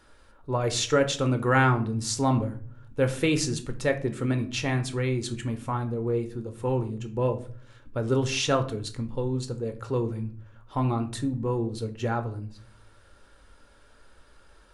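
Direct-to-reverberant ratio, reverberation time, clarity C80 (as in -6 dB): 6.5 dB, 0.45 s, 18.0 dB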